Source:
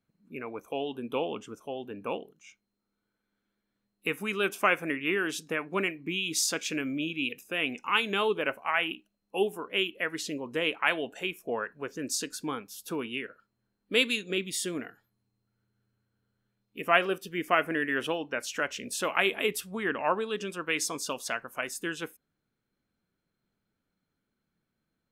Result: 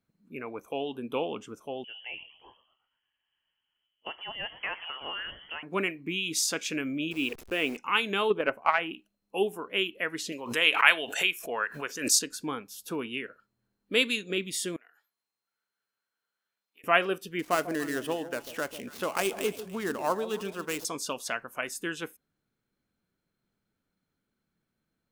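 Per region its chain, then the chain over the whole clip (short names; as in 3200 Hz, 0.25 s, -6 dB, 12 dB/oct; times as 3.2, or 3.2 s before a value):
1.84–5.63 compressor 1.5:1, threshold -48 dBFS + frequency-shifting echo 0.118 s, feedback 55%, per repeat -140 Hz, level -16.5 dB + inverted band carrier 3200 Hz
7.11–7.77 level-crossing sampler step -43.5 dBFS + bell 400 Hz +7.5 dB 0.74 oct
8.3–8.94 high shelf 2500 Hz -11.5 dB + transient shaper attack +12 dB, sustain +1 dB
10.32–12.19 tilt shelf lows -9 dB, about 700 Hz + backwards sustainer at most 110 dB/s
14.76–16.84 compressor 4:1, threshold -53 dBFS + HPF 890 Hz
17.39–20.85 switching dead time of 0.068 ms + dynamic EQ 2100 Hz, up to -8 dB, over -42 dBFS, Q 1.2 + echo with dull and thin repeats by turns 0.144 s, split 820 Hz, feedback 50%, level -11.5 dB
whole clip: dry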